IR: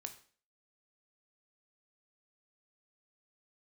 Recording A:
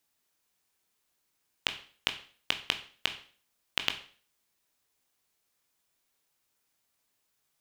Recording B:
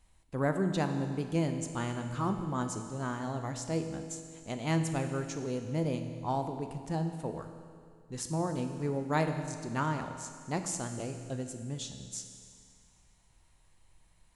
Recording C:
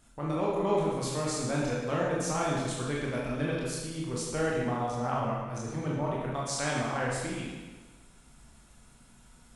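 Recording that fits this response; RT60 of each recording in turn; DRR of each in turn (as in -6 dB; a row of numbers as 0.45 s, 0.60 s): A; 0.45 s, 2.2 s, 1.3 s; 6.5 dB, 6.0 dB, -5.0 dB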